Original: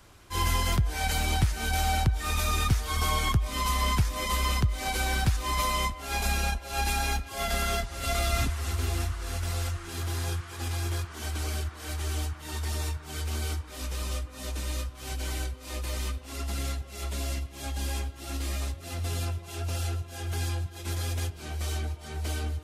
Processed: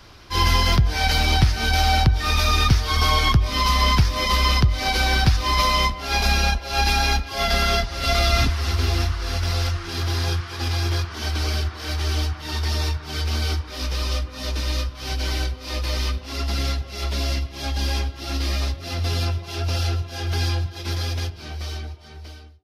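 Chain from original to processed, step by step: ending faded out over 2.10 s; resonant high shelf 6300 Hz -7 dB, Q 3; de-hum 94.95 Hz, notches 9; gain +8 dB

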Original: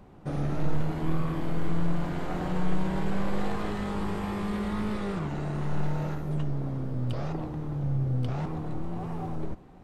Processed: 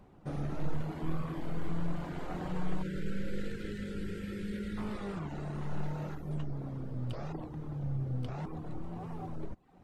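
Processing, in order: spectral gain 2.83–4.78, 560–1300 Hz -27 dB; reverb removal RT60 0.55 s; gain -5.5 dB

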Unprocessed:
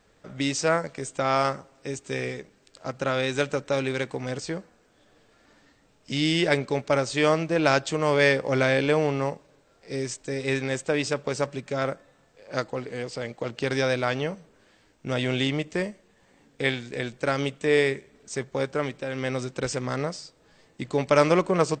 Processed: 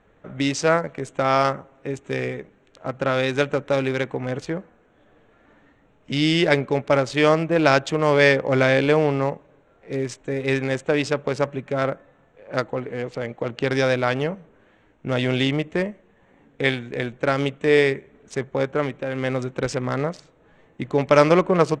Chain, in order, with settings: Wiener smoothing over 9 samples; Bessel low-pass 6700 Hz, order 2; gain +4.5 dB

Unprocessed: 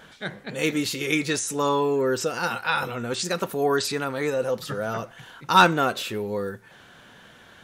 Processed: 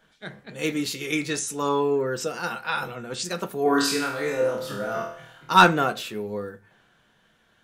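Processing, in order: 3.63–5.53 flutter echo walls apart 4.3 m, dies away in 0.65 s; on a send at -9 dB: reverb RT60 0.25 s, pre-delay 3 ms; on the sum: three-band expander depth 40%; gain -3 dB

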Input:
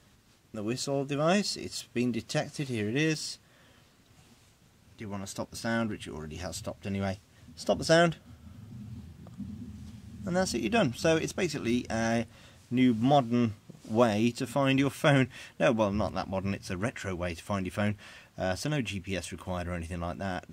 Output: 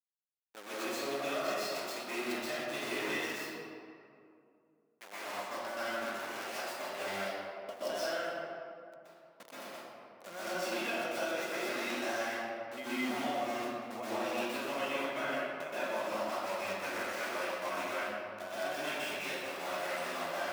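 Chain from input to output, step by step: in parallel at -1 dB: limiter -22 dBFS, peak gain reduction 11 dB; on the sum: high shelf 5000 Hz -9 dB; sample gate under -29.5 dBFS; expander -43 dBFS; HPF 680 Hz 12 dB/oct; compressor, threshold -34 dBFS, peak gain reduction 14 dB; reverb RT60 2.5 s, pre-delay 0.118 s, DRR -11.5 dB; flange 0.24 Hz, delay 1.5 ms, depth 9.3 ms, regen -80%; gain -4.5 dB

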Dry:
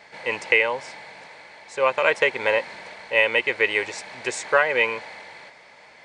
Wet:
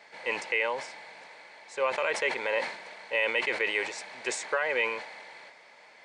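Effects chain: limiter -11 dBFS, peak gain reduction 7.5 dB; Bessel high-pass 250 Hz, order 2; sustainer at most 92 dB/s; gain -5 dB

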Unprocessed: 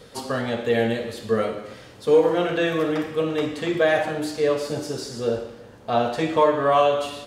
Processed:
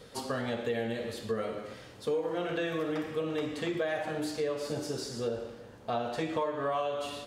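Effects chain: compressor 5:1, threshold -24 dBFS, peak gain reduction 11 dB; gain -5 dB

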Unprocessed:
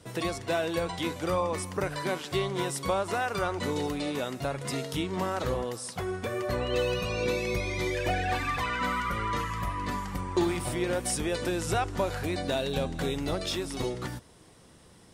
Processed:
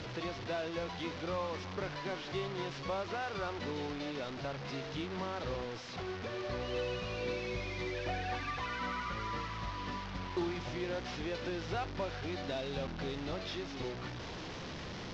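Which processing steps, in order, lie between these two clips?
delta modulation 32 kbps, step -28.5 dBFS; LPF 4700 Hz 12 dB/oct; soft clip -17 dBFS, distortion -26 dB; gain -8 dB

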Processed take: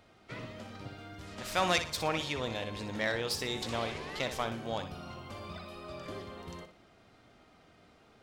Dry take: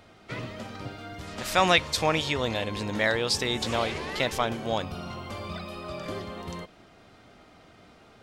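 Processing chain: self-modulated delay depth 0.06 ms; flutter echo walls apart 10.4 m, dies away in 0.36 s; gain -7.5 dB

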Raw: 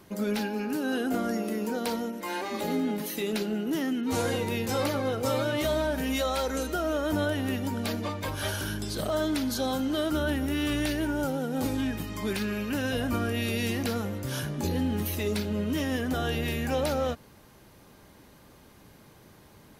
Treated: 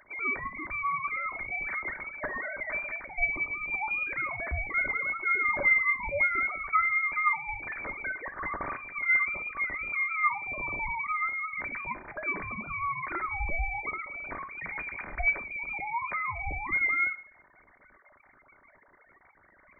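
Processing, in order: sine-wave speech; tilt +3.5 dB/oct; in parallel at +1.5 dB: compressor, threshold -42 dBFS, peak gain reduction 22 dB; on the sum: reverb RT60 0.50 s, pre-delay 3 ms, DRR 6.5 dB; inverted band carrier 2700 Hz; gain -4 dB

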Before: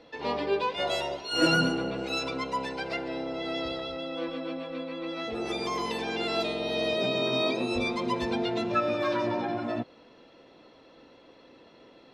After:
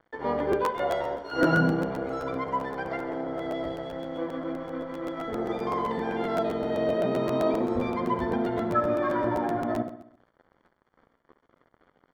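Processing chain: 3.47–4.31 bell 1400 Hz -11.5 dB 0.28 oct; in parallel at +1 dB: compressor, threshold -43 dBFS, peak gain reduction 22.5 dB; on the sum: crossover distortion -42.5 dBFS; polynomial smoothing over 41 samples; on a send: feedback echo 67 ms, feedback 52%, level -9.5 dB; on the sum: crackling interface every 0.13 s, samples 512, repeat, from 0.38; gain +2 dB

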